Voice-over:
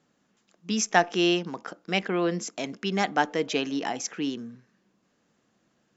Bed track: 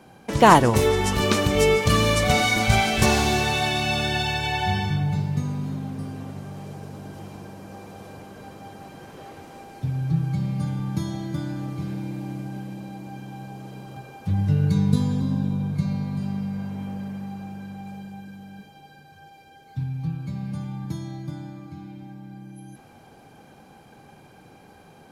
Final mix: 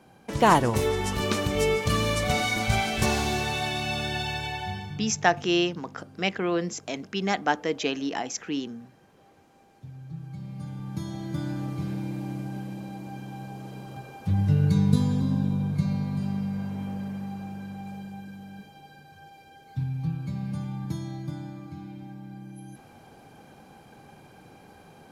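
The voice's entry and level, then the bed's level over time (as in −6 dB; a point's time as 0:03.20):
4.30 s, −0.5 dB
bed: 0:04.39 −5.5 dB
0:05.19 −16.5 dB
0:10.08 −16.5 dB
0:11.48 −1 dB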